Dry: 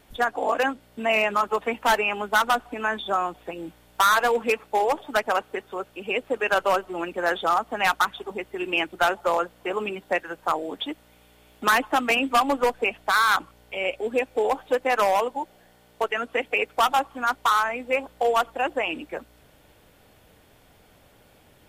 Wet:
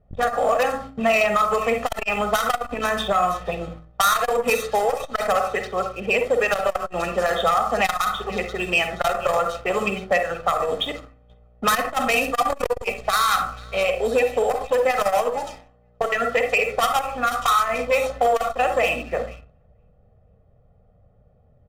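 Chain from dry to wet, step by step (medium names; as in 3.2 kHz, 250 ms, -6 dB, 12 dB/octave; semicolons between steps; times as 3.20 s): feedback echo behind a high-pass 477 ms, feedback 33%, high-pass 4 kHz, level -11 dB; gate -47 dBFS, range -7 dB; reverberation RT60 0.40 s, pre-delay 37 ms, DRR 6.5 dB; compression 4:1, threshold -23 dBFS, peak gain reduction 8 dB; level-controlled noise filter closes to 680 Hz, open at -23.5 dBFS; comb 1.6 ms, depth 82%; waveshaping leveller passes 1; tone controls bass +8 dB, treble +7 dB; de-hum 53.97 Hz, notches 7; transformer saturation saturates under 450 Hz; trim +1.5 dB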